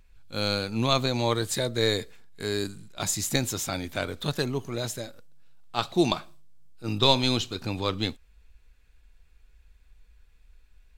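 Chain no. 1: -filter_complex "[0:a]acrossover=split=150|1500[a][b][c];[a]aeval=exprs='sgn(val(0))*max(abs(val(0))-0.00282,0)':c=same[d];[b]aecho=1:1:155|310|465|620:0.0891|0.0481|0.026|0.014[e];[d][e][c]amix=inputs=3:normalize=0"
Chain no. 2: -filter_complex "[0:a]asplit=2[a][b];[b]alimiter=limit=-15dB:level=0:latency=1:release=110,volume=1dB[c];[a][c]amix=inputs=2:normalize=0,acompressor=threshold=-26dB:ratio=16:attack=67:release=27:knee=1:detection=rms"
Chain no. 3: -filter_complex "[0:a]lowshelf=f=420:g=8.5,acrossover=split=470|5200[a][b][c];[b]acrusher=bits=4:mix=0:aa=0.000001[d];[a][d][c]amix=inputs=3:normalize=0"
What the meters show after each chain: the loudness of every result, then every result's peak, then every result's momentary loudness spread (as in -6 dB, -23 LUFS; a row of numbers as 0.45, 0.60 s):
-27.5, -25.5, -24.0 LUFS; -5.5, -7.0, -3.5 dBFS; 11, 8, 11 LU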